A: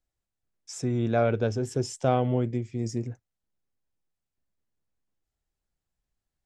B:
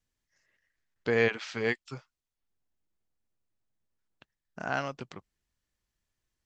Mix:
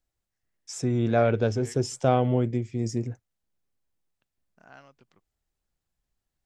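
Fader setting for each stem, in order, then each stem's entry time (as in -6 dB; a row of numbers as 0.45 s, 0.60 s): +2.0 dB, -19.0 dB; 0.00 s, 0.00 s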